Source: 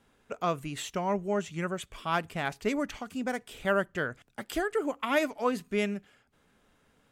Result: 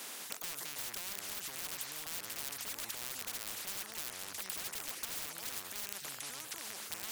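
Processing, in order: rattling part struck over -39 dBFS, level -29 dBFS; HPF 430 Hz 12 dB/oct; echoes that change speed 0.2 s, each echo -5 st, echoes 2, each echo -6 dB; dynamic EQ 1700 Hz, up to +5 dB, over -41 dBFS, Q 0.73; wavefolder -27.5 dBFS; limiter -36.5 dBFS, peak gain reduction 9 dB; tilt +3 dB/oct; spectral compressor 10:1; gain +8 dB

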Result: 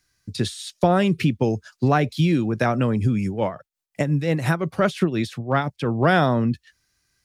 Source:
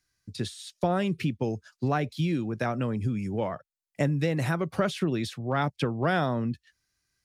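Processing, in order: 3.27–5.91 tremolo 5.7 Hz, depth 67%; gain +8 dB

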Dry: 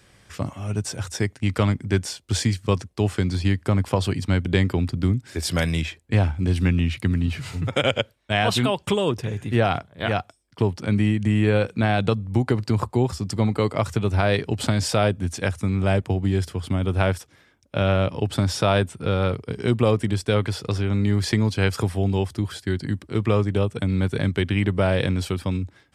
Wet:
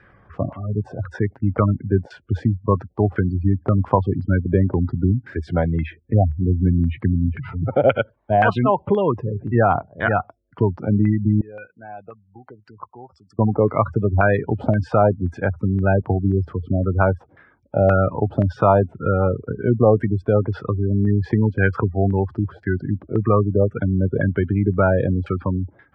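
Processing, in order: spectral gate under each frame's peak -20 dB strong; 11.41–13.39 pre-emphasis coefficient 0.97; LFO low-pass saw down 1.9 Hz 650–1700 Hz; gain +2.5 dB

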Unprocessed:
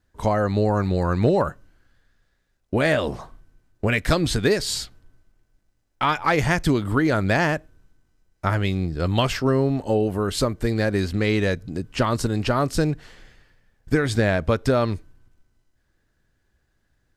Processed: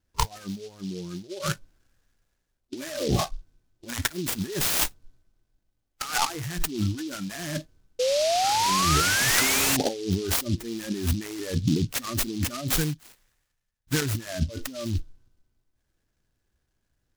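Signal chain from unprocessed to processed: in parallel at -11.5 dB: wrapped overs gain 22.5 dB; 12.76–14.02 on the sum: passive tone stack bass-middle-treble 5-5-5; negative-ratio compressor -31 dBFS, ratio -1; spectral noise reduction 21 dB; dynamic EQ 2600 Hz, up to -4 dB, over -45 dBFS, Q 1.5; 7.99–9.77 painted sound rise 490–2900 Hz -27 dBFS; noise-modulated delay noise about 4200 Hz, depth 0.1 ms; gain +4 dB

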